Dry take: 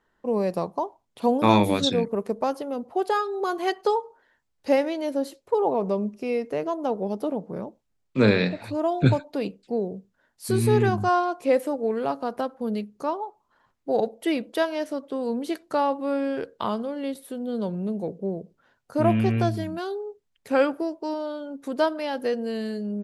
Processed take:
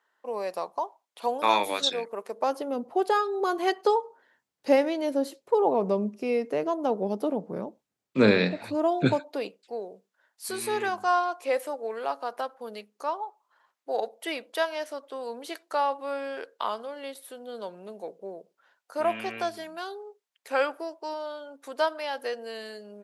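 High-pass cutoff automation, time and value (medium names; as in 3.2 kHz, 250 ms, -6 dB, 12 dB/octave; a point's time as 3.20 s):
2.31 s 690 Hz
2.71 s 170 Hz
8.94 s 170 Hz
9.62 s 670 Hz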